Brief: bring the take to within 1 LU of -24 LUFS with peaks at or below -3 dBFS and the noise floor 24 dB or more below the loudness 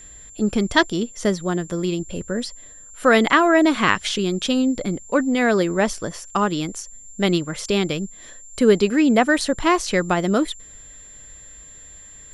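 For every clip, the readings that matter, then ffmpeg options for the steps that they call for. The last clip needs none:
steady tone 7300 Hz; tone level -41 dBFS; loudness -20.0 LUFS; peak -1.0 dBFS; loudness target -24.0 LUFS
-> -af "bandreject=f=7.3k:w=30"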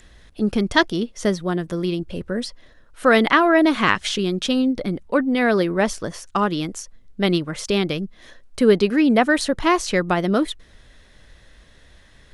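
steady tone none; loudness -20.5 LUFS; peak -1.0 dBFS; loudness target -24.0 LUFS
-> -af "volume=-3.5dB"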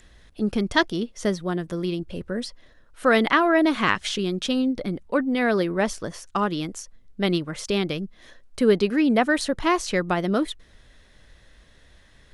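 loudness -24.0 LUFS; peak -4.5 dBFS; noise floor -54 dBFS

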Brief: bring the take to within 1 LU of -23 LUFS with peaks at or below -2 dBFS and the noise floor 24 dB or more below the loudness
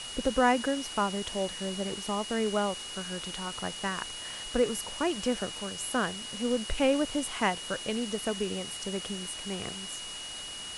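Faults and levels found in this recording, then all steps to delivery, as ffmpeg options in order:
steady tone 2900 Hz; tone level -40 dBFS; noise floor -40 dBFS; noise floor target -56 dBFS; loudness -31.5 LUFS; peak -12.5 dBFS; loudness target -23.0 LUFS
-> -af "bandreject=f=2.9k:w=30"
-af "afftdn=nr=16:nf=-40"
-af "volume=8.5dB"

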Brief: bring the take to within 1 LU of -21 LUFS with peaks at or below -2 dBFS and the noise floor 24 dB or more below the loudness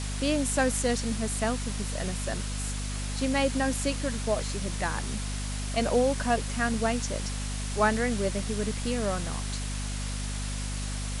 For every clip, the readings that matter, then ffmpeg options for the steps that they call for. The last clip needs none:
hum 50 Hz; harmonics up to 250 Hz; hum level -31 dBFS; noise floor -33 dBFS; noise floor target -54 dBFS; loudness -29.5 LUFS; peak -11.5 dBFS; loudness target -21.0 LUFS
-> -af "bandreject=f=50:t=h:w=4,bandreject=f=100:t=h:w=4,bandreject=f=150:t=h:w=4,bandreject=f=200:t=h:w=4,bandreject=f=250:t=h:w=4"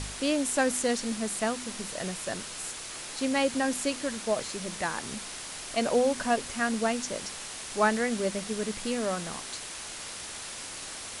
hum none; noise floor -40 dBFS; noise floor target -55 dBFS
-> -af "afftdn=nr=15:nf=-40"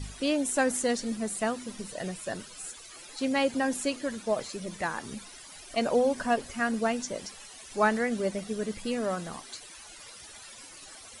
noise floor -48 dBFS; noise floor target -54 dBFS
-> -af "afftdn=nr=6:nf=-48"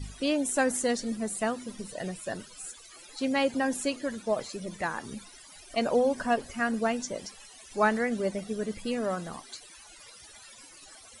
noise floor -51 dBFS; noise floor target -54 dBFS
-> -af "afftdn=nr=6:nf=-51"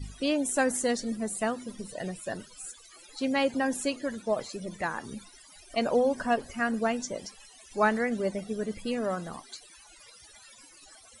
noise floor -54 dBFS; loudness -30.0 LUFS; peak -11.5 dBFS; loudness target -21.0 LUFS
-> -af "volume=9dB"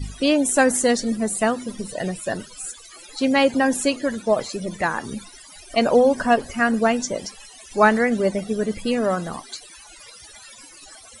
loudness -21.0 LUFS; peak -2.5 dBFS; noise floor -45 dBFS

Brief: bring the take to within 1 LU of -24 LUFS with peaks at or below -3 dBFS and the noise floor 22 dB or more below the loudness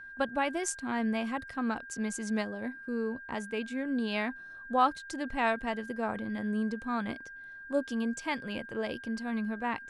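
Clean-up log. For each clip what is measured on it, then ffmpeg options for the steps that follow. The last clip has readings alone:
steady tone 1600 Hz; tone level -44 dBFS; loudness -33.5 LUFS; peak -13.5 dBFS; loudness target -24.0 LUFS
-> -af "bandreject=f=1.6k:w=30"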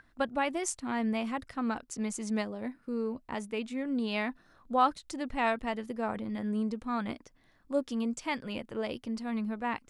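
steady tone none; loudness -33.5 LUFS; peak -14.0 dBFS; loudness target -24.0 LUFS
-> -af "volume=9.5dB"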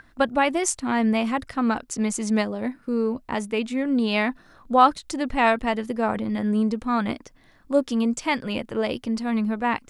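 loudness -24.0 LUFS; peak -4.5 dBFS; noise floor -56 dBFS

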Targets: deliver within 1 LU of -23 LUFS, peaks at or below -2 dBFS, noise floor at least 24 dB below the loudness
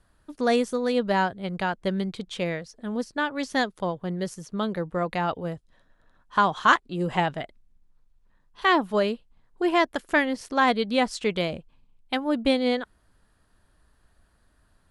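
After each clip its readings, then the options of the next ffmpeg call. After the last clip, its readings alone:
loudness -26.0 LUFS; peak -4.0 dBFS; loudness target -23.0 LUFS
-> -af "volume=3dB,alimiter=limit=-2dB:level=0:latency=1"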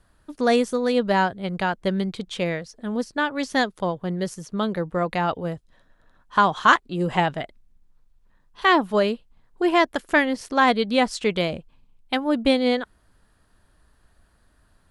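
loudness -23.0 LUFS; peak -2.0 dBFS; noise floor -62 dBFS

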